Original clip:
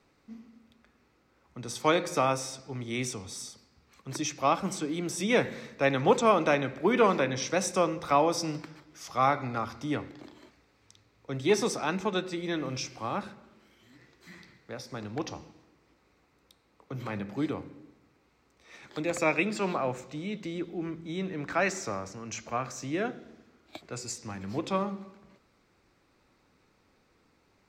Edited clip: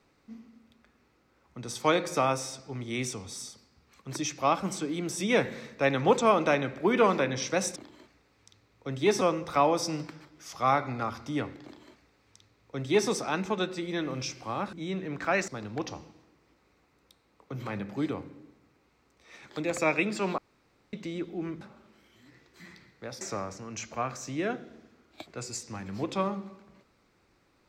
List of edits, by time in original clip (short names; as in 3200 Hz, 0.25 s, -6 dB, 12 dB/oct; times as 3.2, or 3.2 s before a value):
10.19–11.64 copy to 7.76
13.28–14.88 swap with 21.01–21.76
19.78–20.33 room tone